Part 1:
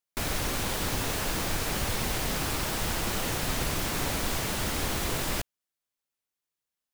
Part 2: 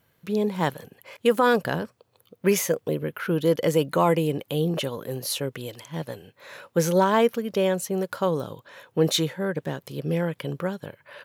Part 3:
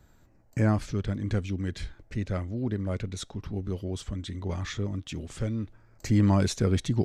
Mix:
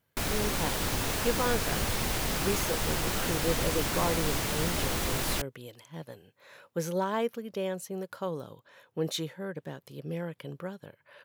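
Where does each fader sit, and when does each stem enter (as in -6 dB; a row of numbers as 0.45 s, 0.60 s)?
-0.5 dB, -10.0 dB, mute; 0.00 s, 0.00 s, mute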